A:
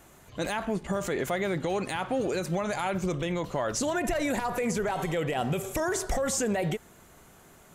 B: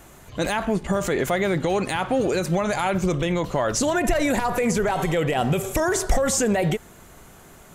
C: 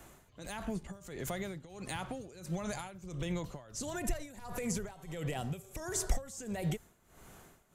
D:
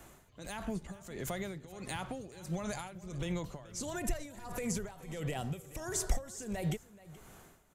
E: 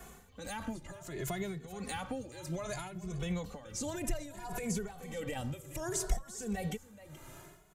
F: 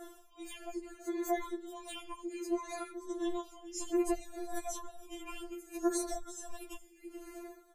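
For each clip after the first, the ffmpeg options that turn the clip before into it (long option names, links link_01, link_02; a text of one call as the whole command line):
ffmpeg -i in.wav -af "lowshelf=frequency=63:gain=6,volume=6.5dB" out.wav
ffmpeg -i in.wav -filter_complex "[0:a]acrossover=split=170|4300[link_01][link_02][link_03];[link_02]acompressor=threshold=-30dB:ratio=6[link_04];[link_01][link_04][link_03]amix=inputs=3:normalize=0,tremolo=f=1.5:d=0.85,volume=-7dB" out.wav
ffmpeg -i in.wav -af "aecho=1:1:427:0.112" out.wav
ffmpeg -i in.wav -filter_complex "[0:a]asplit=2[link_01][link_02];[link_02]acompressor=threshold=-44dB:ratio=6,volume=1.5dB[link_03];[link_01][link_03]amix=inputs=2:normalize=0,asplit=2[link_04][link_05];[link_05]adelay=2.3,afreqshift=0.63[link_06];[link_04][link_06]amix=inputs=2:normalize=1" out.wav
ffmpeg -i in.wav -filter_complex "[0:a]acrossover=split=200|490|4800[link_01][link_02][link_03][link_04];[link_02]aeval=exprs='0.0266*sin(PI/2*2.51*val(0)/0.0266)':channel_layout=same[link_05];[link_01][link_05][link_03][link_04]amix=inputs=4:normalize=0,afftfilt=real='re*4*eq(mod(b,16),0)':imag='im*4*eq(mod(b,16),0)':win_size=2048:overlap=0.75" out.wav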